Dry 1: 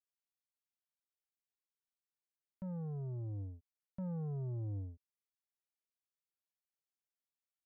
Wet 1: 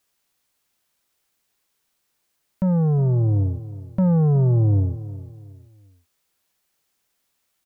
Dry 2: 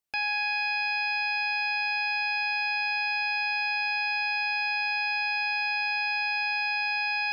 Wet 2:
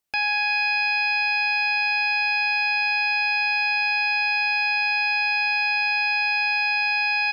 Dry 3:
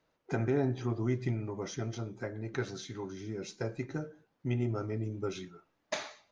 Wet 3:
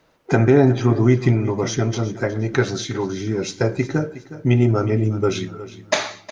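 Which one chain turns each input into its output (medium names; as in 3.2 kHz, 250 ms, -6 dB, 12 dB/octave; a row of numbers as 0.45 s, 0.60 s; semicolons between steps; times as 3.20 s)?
feedback delay 363 ms, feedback 34%, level -15.5 dB; normalise loudness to -20 LUFS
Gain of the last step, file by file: +22.5 dB, +5.5 dB, +16.0 dB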